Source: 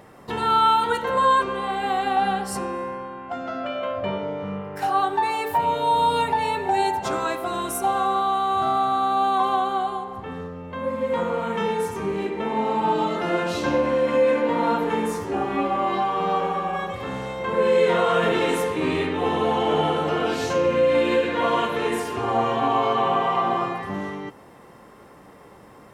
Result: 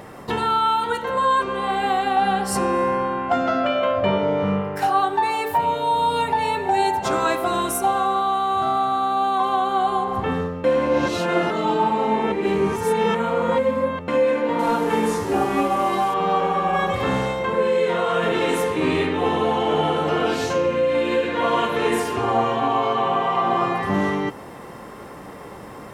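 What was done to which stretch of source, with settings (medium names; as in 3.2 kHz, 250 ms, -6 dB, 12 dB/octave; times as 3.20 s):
10.64–14.08 s: reverse
14.59–16.14 s: one-bit delta coder 64 kbps, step -37.5 dBFS
whole clip: gain riding 0.5 s; trim +2 dB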